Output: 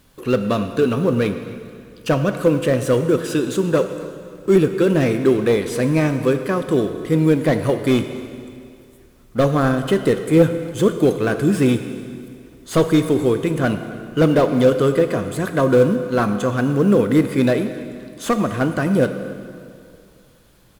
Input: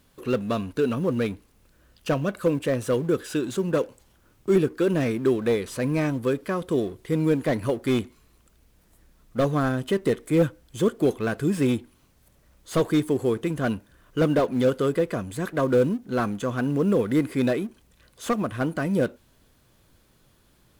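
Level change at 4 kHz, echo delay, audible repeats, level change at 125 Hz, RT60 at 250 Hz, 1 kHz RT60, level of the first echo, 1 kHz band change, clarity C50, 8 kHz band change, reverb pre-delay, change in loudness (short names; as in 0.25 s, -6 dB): +6.5 dB, 0.265 s, 1, +7.0 dB, 2.3 s, 2.3 s, -21.5 dB, +6.5 dB, 9.0 dB, +6.5 dB, 4 ms, +6.5 dB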